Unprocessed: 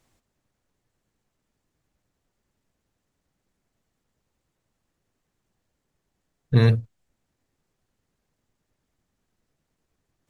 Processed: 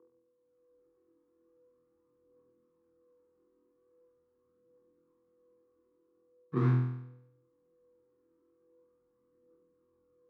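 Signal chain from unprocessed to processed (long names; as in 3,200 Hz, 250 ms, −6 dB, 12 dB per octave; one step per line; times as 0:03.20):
running median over 41 samples
automatic gain control gain up to 14 dB
steady tone 480 Hz −44 dBFS
phase shifter 0.42 Hz, delay 3.3 ms, feedback 45%
in parallel at −10 dB: bit reduction 6 bits
on the sum: frequency shifter +14 Hz
pair of resonant band-passes 610 Hz, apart 1.7 octaves
on a send: flutter between parallel walls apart 4.1 metres, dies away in 0.78 s
on the sum: level −4.5 dB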